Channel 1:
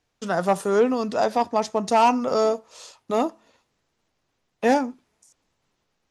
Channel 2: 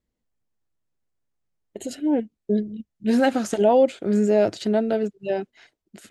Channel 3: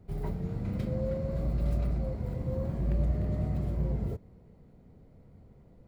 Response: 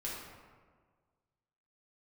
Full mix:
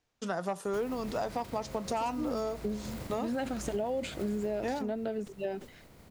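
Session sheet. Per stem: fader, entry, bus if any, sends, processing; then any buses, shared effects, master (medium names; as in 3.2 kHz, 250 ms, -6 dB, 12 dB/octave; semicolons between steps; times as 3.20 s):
-5.0 dB, 0.00 s, no send, none
-6.5 dB, 0.15 s, no send, decay stretcher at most 150 dB/s
-4.0 dB, 0.65 s, send -6 dB, spectral contrast reduction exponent 0.51; compression 10:1, threshold -36 dBFS, peak gain reduction 13.5 dB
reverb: on, RT60 1.6 s, pre-delay 3 ms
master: compression, threshold -30 dBFS, peak gain reduction 11 dB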